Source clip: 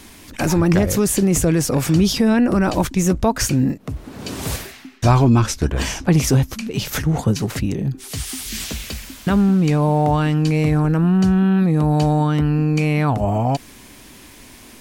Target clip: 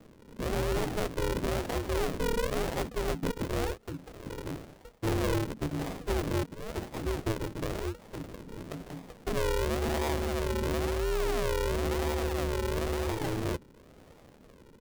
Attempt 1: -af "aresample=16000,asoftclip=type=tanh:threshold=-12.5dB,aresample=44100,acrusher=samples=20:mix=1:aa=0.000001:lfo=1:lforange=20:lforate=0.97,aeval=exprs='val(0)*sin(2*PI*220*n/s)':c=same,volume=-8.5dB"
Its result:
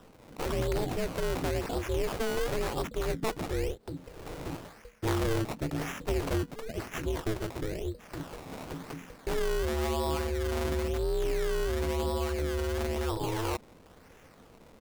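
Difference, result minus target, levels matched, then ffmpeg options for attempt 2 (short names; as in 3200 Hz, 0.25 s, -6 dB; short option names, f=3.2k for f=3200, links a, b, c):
decimation with a swept rate: distortion -10 dB
-af "aresample=16000,asoftclip=type=tanh:threshold=-12.5dB,aresample=44100,acrusher=samples=62:mix=1:aa=0.000001:lfo=1:lforange=62:lforate=0.97,aeval=exprs='val(0)*sin(2*PI*220*n/s)':c=same,volume=-8.5dB"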